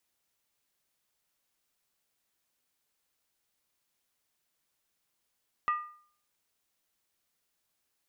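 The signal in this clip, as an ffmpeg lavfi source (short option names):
-f lavfi -i "aevalsrc='0.0708*pow(10,-3*t/0.52)*sin(2*PI*1210*t)+0.0224*pow(10,-3*t/0.412)*sin(2*PI*1928.7*t)+0.00708*pow(10,-3*t/0.356)*sin(2*PI*2584.6*t)+0.00224*pow(10,-3*t/0.343)*sin(2*PI*2778.2*t)+0.000708*pow(10,-3*t/0.319)*sin(2*PI*3210.1*t)':d=0.63:s=44100"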